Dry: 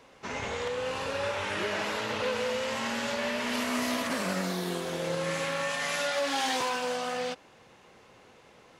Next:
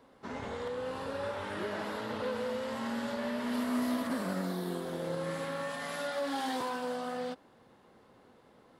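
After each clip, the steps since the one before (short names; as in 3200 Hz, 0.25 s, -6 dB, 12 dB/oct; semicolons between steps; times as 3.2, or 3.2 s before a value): fifteen-band EQ 250 Hz +6 dB, 2500 Hz -10 dB, 6300 Hz -11 dB; gain -4.5 dB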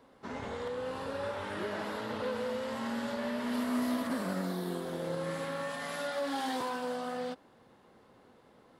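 nothing audible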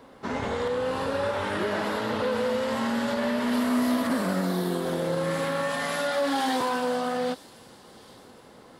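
thin delay 0.811 s, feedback 45%, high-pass 4000 Hz, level -14 dB; in parallel at +2 dB: limiter -30 dBFS, peak gain reduction 7.5 dB; on the sum: gain +3 dB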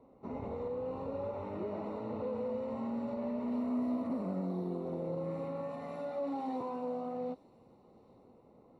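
running mean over 27 samples; gain -8.5 dB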